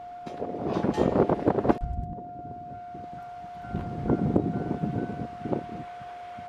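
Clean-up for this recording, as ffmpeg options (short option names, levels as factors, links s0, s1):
-af "bandreject=f=710:w=30"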